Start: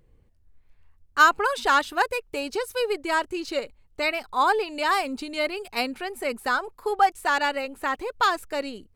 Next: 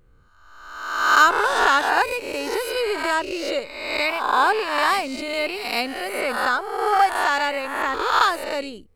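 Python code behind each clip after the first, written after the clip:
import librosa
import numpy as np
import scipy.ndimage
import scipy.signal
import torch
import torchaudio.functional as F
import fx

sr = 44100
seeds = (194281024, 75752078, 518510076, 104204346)

y = fx.spec_swells(x, sr, rise_s=1.09)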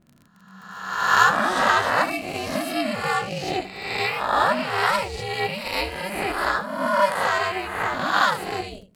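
y = fx.room_early_taps(x, sr, ms=(20, 79), db=(-5.0, -12.0))
y = y * np.sin(2.0 * np.pi * 190.0 * np.arange(len(y)) / sr)
y = fx.dmg_crackle(y, sr, seeds[0], per_s=42.0, level_db=-38.0)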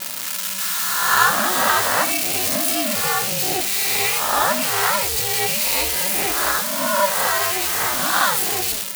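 y = x + 0.5 * 10.0 ** (-11.5 / 20.0) * np.diff(np.sign(x), prepend=np.sign(x[:1]))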